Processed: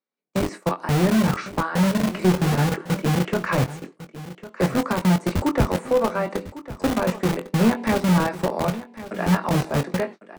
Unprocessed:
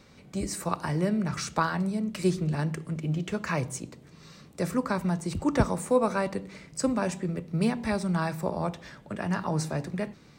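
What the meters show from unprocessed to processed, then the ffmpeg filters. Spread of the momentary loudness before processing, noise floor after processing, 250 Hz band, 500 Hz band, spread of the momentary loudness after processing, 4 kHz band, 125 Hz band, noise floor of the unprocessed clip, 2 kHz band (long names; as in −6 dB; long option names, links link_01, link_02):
9 LU, −55 dBFS, +7.0 dB, +6.5 dB, 11 LU, +8.5 dB, +7.5 dB, −53 dBFS, +7.0 dB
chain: -filter_complex "[0:a]aemphasis=mode=reproduction:type=75fm,agate=range=-42dB:threshold=-38dB:ratio=16:detection=peak,acrossover=split=3100[link_01][link_02];[link_02]acompressor=threshold=-60dB:ratio=4:attack=1:release=60[link_03];[link_01][link_03]amix=inputs=2:normalize=0,highshelf=frequency=5500:gain=8,acrossover=split=240[link_04][link_05];[link_04]acrusher=bits=4:mix=0:aa=0.000001[link_06];[link_05]alimiter=limit=-20.5dB:level=0:latency=1:release=498[link_07];[link_06][link_07]amix=inputs=2:normalize=0,asoftclip=type=tanh:threshold=-19dB,asplit=2[link_08][link_09];[link_09]adelay=22,volume=-9dB[link_10];[link_08][link_10]amix=inputs=2:normalize=0,asplit=2[link_11][link_12];[link_12]aecho=0:1:1102:0.168[link_13];[link_11][link_13]amix=inputs=2:normalize=0,volume=8dB"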